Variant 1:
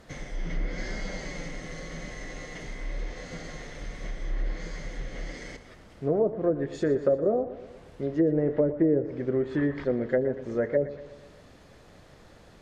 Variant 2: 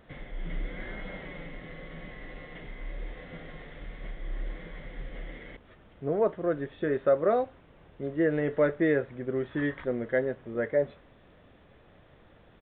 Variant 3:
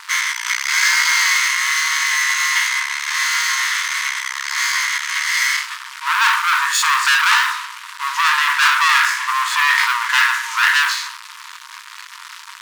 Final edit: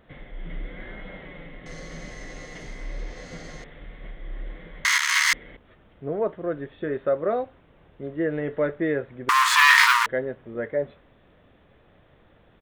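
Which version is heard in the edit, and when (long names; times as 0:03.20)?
2
0:01.66–0:03.64: punch in from 1
0:04.85–0:05.33: punch in from 3
0:09.29–0:10.06: punch in from 3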